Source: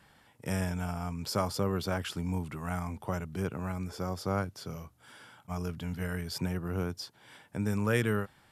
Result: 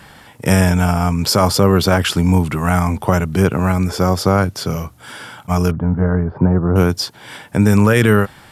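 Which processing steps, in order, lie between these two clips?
5.71–6.76 LPF 1200 Hz 24 dB/oct; maximiser +20.5 dB; gain -1 dB

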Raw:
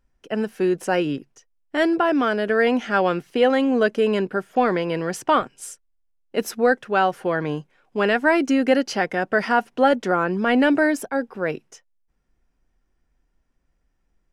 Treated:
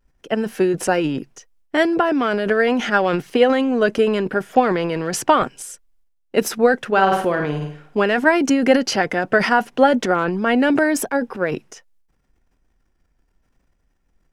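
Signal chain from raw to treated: 6.87–7.97 flutter echo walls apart 9 m, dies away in 0.46 s; vibrato 0.74 Hz 30 cents; transient shaper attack +6 dB, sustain +10 dB

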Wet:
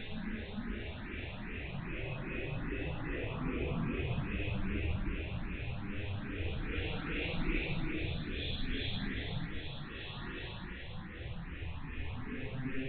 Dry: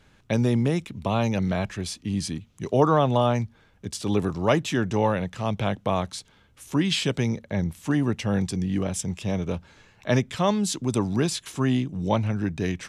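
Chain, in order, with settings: rattling part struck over -34 dBFS, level -19 dBFS; reverse; compressor 12:1, threshold -34 dBFS, peak gain reduction 20.5 dB; reverse; dispersion lows, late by 68 ms, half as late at 330 Hz; rotary speaker horn 6.7 Hz, later 0.65 Hz, at 7.02; diffused feedback echo 0.46 s, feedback 51%, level -10 dB; on a send at -6 dB: reverb RT60 0.45 s, pre-delay 57 ms; on the sum: echoes that change speed 0.11 s, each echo -5 st, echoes 3, each echo -6 dB; LPC vocoder at 8 kHz pitch kept; Paulstretch 14×, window 0.10 s, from 10.75; endless phaser +2.5 Hz; gain +3 dB

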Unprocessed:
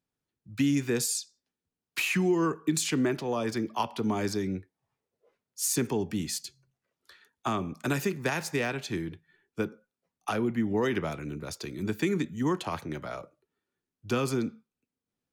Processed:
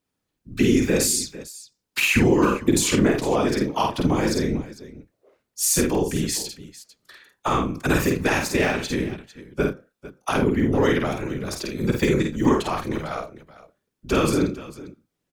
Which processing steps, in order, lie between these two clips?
whisperiser; tapped delay 50/81/451 ms -3.5/-15/-16.5 dB; gain +6.5 dB

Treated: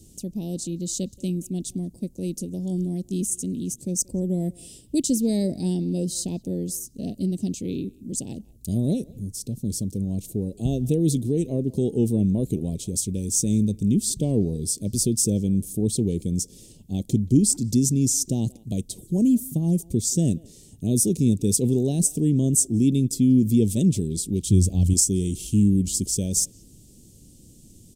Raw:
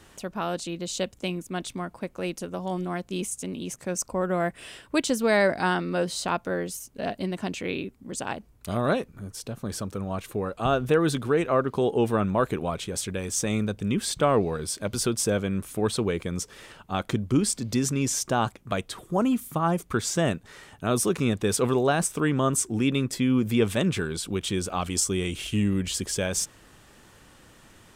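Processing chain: Chebyshev band-stop 250–6800 Hz, order 2; 24.46–24.94 bell 90 Hz +12.5 dB 1.4 oct; speakerphone echo 0.18 s, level -22 dB; gain +6.5 dB

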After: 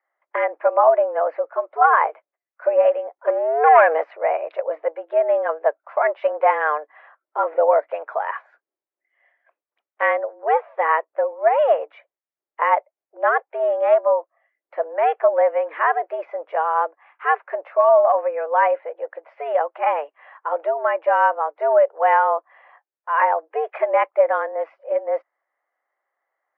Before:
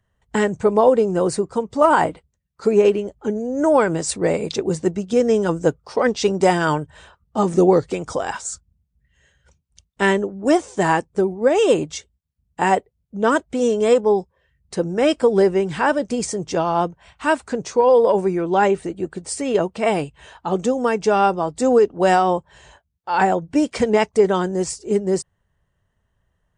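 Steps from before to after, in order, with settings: 3.27–4.04 sample leveller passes 2; mistuned SSB +150 Hz 360–2100 Hz

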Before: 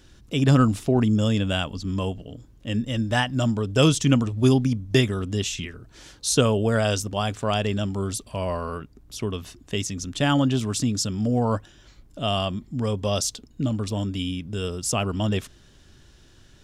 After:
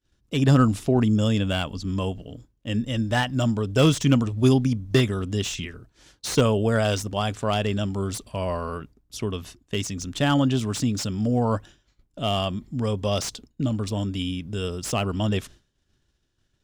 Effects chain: expander -39 dBFS; slew limiter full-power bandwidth 230 Hz

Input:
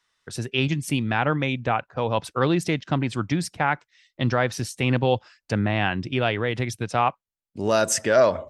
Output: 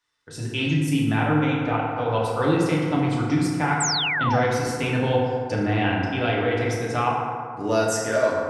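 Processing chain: FDN reverb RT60 2.3 s, low-frequency decay 0.85×, high-frequency decay 0.4×, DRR -5 dB; AGC gain up to 5 dB; painted sound fall, 3.8–4.4, 640–8400 Hz -17 dBFS; gain -7.5 dB

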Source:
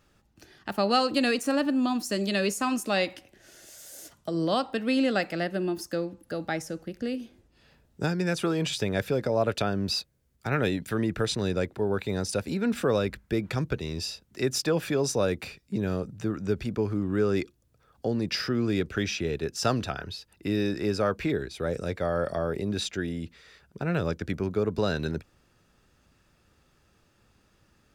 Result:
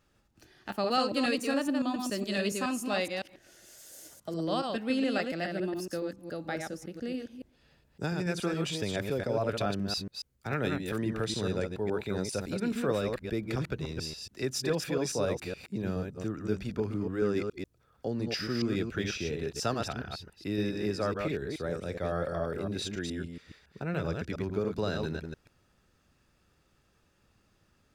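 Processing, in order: reverse delay 0.14 s, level -4 dB; gain -5.5 dB

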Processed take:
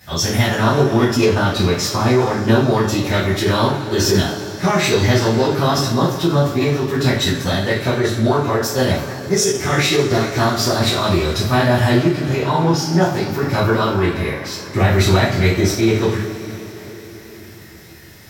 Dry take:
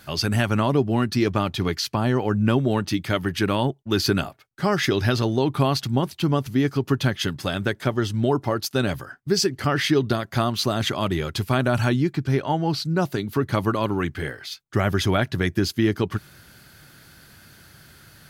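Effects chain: two-slope reverb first 0.45 s, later 4.9 s, from -19 dB, DRR -9.5 dB; formant shift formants +3 st; gain -3.5 dB

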